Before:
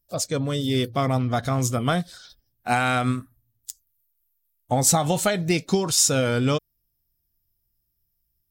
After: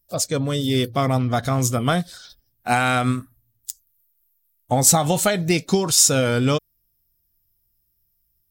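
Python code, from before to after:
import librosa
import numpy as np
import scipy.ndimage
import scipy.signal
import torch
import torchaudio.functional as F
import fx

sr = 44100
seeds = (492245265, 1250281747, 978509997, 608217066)

y = fx.high_shelf(x, sr, hz=9300.0, db=5.0)
y = y * 10.0 ** (2.5 / 20.0)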